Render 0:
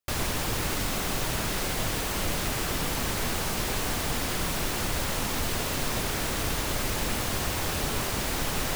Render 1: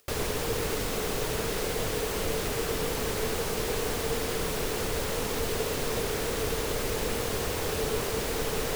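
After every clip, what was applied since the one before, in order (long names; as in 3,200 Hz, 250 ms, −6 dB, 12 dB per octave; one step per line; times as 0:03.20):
parametric band 450 Hz +14.5 dB 0.35 octaves
upward compression, threshold −42 dBFS
level −3 dB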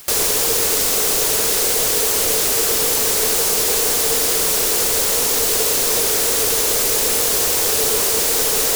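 bass and treble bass −10 dB, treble +13 dB
in parallel at −12 dB: bit-depth reduction 6 bits, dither triangular
on the sum: level +6 dB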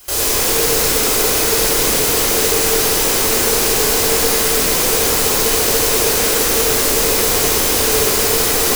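convolution reverb RT60 3.9 s, pre-delay 3 ms, DRR −12 dB
level −9 dB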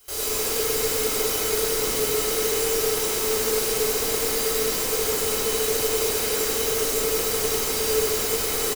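tuned comb filter 430 Hz, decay 0.17 s, harmonics odd, mix 80%
on a send: single-tap delay 103 ms −3 dB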